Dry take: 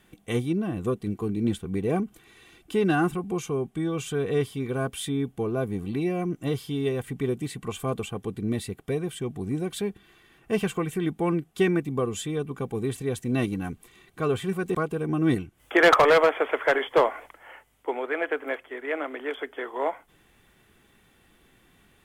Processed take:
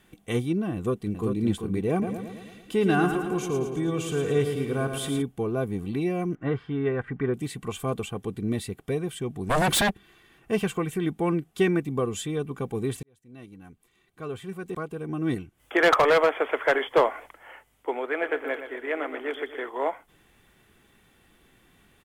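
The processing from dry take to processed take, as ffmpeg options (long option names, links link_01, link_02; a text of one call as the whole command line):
ffmpeg -i in.wav -filter_complex "[0:a]asplit=2[link_01][link_02];[link_02]afade=type=in:start_time=0.75:duration=0.01,afade=type=out:start_time=1.41:duration=0.01,aecho=0:1:390|780:0.530884|0.0530884[link_03];[link_01][link_03]amix=inputs=2:normalize=0,asplit=3[link_04][link_05][link_06];[link_04]afade=type=out:start_time=2.01:duration=0.02[link_07];[link_05]aecho=1:1:111|222|333|444|555|666|777|888:0.447|0.264|0.155|0.0917|0.0541|0.0319|0.0188|0.0111,afade=type=in:start_time=2.01:duration=0.02,afade=type=out:start_time=5.21:duration=0.02[link_08];[link_06]afade=type=in:start_time=5.21:duration=0.02[link_09];[link_07][link_08][link_09]amix=inputs=3:normalize=0,asettb=1/sr,asplit=3[link_10][link_11][link_12];[link_10]atrim=end=6.354[link_13];[link_11]atrim=start=6.35:end=7.34,asetpts=PTS-STARTPTS,afade=type=in:duration=0.004:curve=qsin,afade=type=out:start_time=0.986:duration=0.004:curve=qsin,lowpass=frequency=1600:width_type=q:width=2.9[link_14];[link_12]atrim=start=7.336[link_15];[link_13][link_14]acrossfade=duration=0.004:curve1=hsin:curve2=qsin[link_16];[link_16][link_15]acrossfade=duration=0.004:curve1=qsin:curve2=hsin,asplit=3[link_17][link_18][link_19];[link_17]afade=type=out:start_time=9.49:duration=0.02[link_20];[link_18]aeval=exprs='0.119*sin(PI/2*5.01*val(0)/0.119)':channel_layout=same,afade=type=in:start_time=9.49:duration=0.02,afade=type=out:start_time=9.89:duration=0.02[link_21];[link_19]afade=type=in:start_time=9.89:duration=0.02[link_22];[link_20][link_21][link_22]amix=inputs=3:normalize=0,asplit=3[link_23][link_24][link_25];[link_23]afade=type=out:start_time=18.21:duration=0.02[link_26];[link_24]aecho=1:1:121|242|363|484|605:0.316|0.152|0.0729|0.035|0.0168,afade=type=in:start_time=18.21:duration=0.02,afade=type=out:start_time=19.68:duration=0.02[link_27];[link_25]afade=type=in:start_time=19.68:duration=0.02[link_28];[link_26][link_27][link_28]amix=inputs=3:normalize=0,asplit=2[link_29][link_30];[link_29]atrim=end=13.03,asetpts=PTS-STARTPTS,afade=type=out:start_time=13.026:duration=0.004:curve=hsin[link_31];[link_30]atrim=start=13.03,asetpts=PTS-STARTPTS,afade=type=in:duration=3.72[link_32];[link_31][link_32]concat=n=2:v=0:a=1" out.wav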